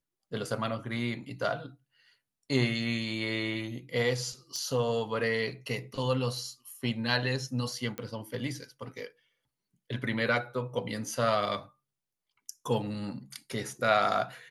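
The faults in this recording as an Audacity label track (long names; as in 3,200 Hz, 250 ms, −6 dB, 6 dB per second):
4.560000	4.560000	click −24 dBFS
7.980000	7.980000	click −21 dBFS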